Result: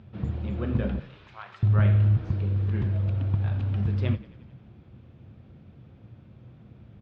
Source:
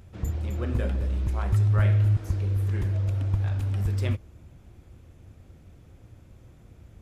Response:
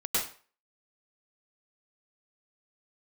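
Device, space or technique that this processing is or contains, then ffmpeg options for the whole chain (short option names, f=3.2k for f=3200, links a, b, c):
frequency-shifting delay pedal into a guitar cabinet: -filter_complex "[0:a]asettb=1/sr,asplit=3[a][b][c];[a]atrim=end=0.994[d];[b]atrim=start=0.99:end=1.63,asetpts=PTS-STARTPTS,afade=t=in:d=0.004:c=qsin,afade=t=out:st=0.636:d=0.004:c=qsin,highpass=1.2k[e];[c]atrim=start=1.626[f];[d][e]acrossfade=d=0.004:c1=hsin:c2=qsin[g];[g][f]acrossfade=d=0.004:c1=qsin:c2=hsin,asplit=7[h][i][j][k][l][m][n];[i]adelay=89,afreqshift=-31,volume=-18dB[o];[j]adelay=178,afreqshift=-62,volume=-21.9dB[p];[k]adelay=267,afreqshift=-93,volume=-25.8dB[q];[l]adelay=356,afreqshift=-124,volume=-29.6dB[r];[m]adelay=445,afreqshift=-155,volume=-33.5dB[s];[n]adelay=534,afreqshift=-186,volume=-37.4dB[t];[h][o][p][q][r][s][t]amix=inputs=7:normalize=0,highpass=83,equalizer=f=130:t=q:w=4:g=8,equalizer=f=210:t=q:w=4:g=8,equalizer=f=2k:t=q:w=4:g=-3,lowpass=f=3.9k:w=0.5412,lowpass=f=3.9k:w=1.3066"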